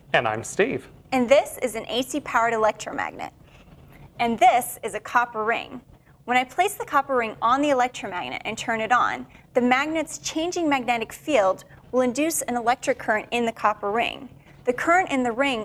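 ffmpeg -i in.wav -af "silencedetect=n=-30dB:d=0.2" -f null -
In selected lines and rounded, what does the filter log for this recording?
silence_start: 0.80
silence_end: 1.12 | silence_duration: 0.33
silence_start: 3.28
silence_end: 4.20 | silence_duration: 0.91
silence_start: 5.77
silence_end: 6.28 | silence_duration: 0.50
silence_start: 9.22
silence_end: 9.56 | silence_duration: 0.33
silence_start: 11.59
silence_end: 11.93 | silence_duration: 0.34
silence_start: 14.22
silence_end: 14.67 | silence_duration: 0.45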